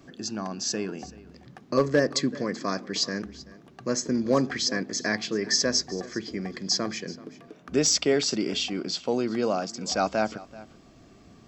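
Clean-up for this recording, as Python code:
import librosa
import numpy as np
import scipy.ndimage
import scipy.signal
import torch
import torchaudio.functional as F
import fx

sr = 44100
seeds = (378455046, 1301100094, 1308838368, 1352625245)

y = fx.fix_declip(x, sr, threshold_db=-12.0)
y = fx.fix_echo_inverse(y, sr, delay_ms=383, level_db=-19.5)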